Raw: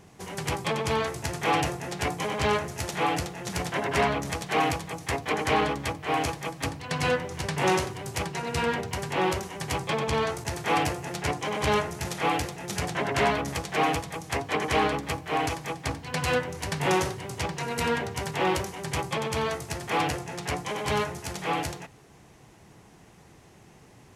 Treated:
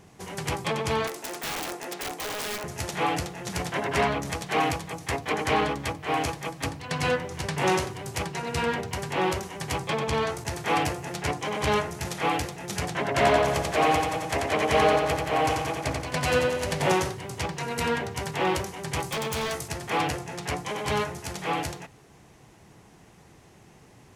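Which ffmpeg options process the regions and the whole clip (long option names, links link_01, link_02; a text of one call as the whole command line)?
ffmpeg -i in.wav -filter_complex "[0:a]asettb=1/sr,asplit=3[link_01][link_02][link_03];[link_01]atrim=end=1.074[link_04];[link_02]atrim=start=1.07:end=2.64,asetpts=PTS-STARTPTS,afade=type=in:duration=0.004:curve=qsin,afade=type=out:start_time=1.566:duration=0.004:curve=qsin,highpass=frequency=250:width=0.5412,highpass=frequency=250:width=1.3066,acompressor=threshold=-27dB:ratio=8:attack=3.2:release=140:knee=1:detection=peak,aeval=exprs='(mod(20*val(0)+1,2)-1)/20':channel_layout=same[link_05];[link_03]atrim=start=2.636[link_06];[link_04][link_05]acrossfade=duration=0.004:curve1=hsin:curve2=qsin[link_07];[link_07][link_06]acrossfade=duration=0.004:curve1=qsin:curve2=hsin,asettb=1/sr,asplit=3[link_08][link_09][link_10];[link_08]atrim=end=13.084[link_11];[link_09]atrim=start=13.08:end=16.93,asetpts=PTS-STARTPTS,afade=type=in:duration=0.004:curve=qsin,afade=type=out:start_time=3.846:duration=0.004:curve=qsin,equalizer=frequency=610:width=5.6:gain=9,aecho=1:1:88|176|264|352|440|528|616|704:0.668|0.394|0.233|0.137|0.081|0.0478|0.0282|0.0166,atrim=end_sample=169785[link_12];[link_10]atrim=start=16.926[link_13];[link_11][link_12]acrossfade=duration=0.004:curve1=hsin:curve2=qsin[link_14];[link_14][link_13]acrossfade=duration=0.004:curve1=qsin:curve2=hsin,asettb=1/sr,asplit=3[link_15][link_16][link_17];[link_15]atrim=end=19.004[link_18];[link_16]atrim=start=19:end=19.68,asetpts=PTS-STARTPTS,afade=type=in:duration=0.004:curve=qsin,afade=type=out:start_time=0.676:duration=0.004:curve=qsin,highshelf=frequency=3500:gain=8,aeval=exprs='0.0668*(abs(mod(val(0)/0.0668+3,4)-2)-1)':channel_layout=same[link_19];[link_17]atrim=start=19.676[link_20];[link_18][link_19]acrossfade=duration=0.004:curve1=hsin:curve2=qsin[link_21];[link_21][link_20]acrossfade=duration=0.004:curve1=qsin:curve2=hsin" out.wav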